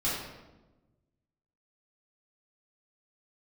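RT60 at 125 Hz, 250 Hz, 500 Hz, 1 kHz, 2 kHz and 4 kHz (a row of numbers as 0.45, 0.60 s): 1.8, 1.5, 1.2, 1.0, 0.80, 0.70 s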